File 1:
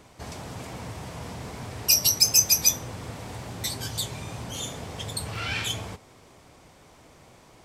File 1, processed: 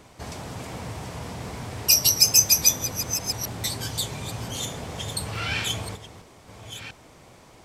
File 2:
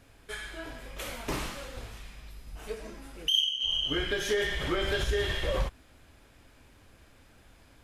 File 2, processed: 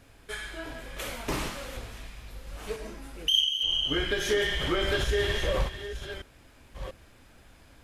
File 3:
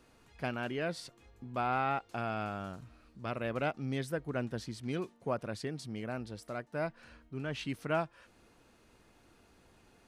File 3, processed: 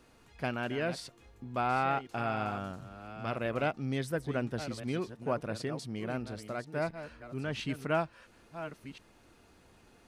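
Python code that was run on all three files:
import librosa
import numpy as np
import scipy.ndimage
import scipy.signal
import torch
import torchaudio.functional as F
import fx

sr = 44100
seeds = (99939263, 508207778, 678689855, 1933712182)

y = fx.reverse_delay(x, sr, ms=691, wet_db=-11.0)
y = y * 10.0 ** (2.0 / 20.0)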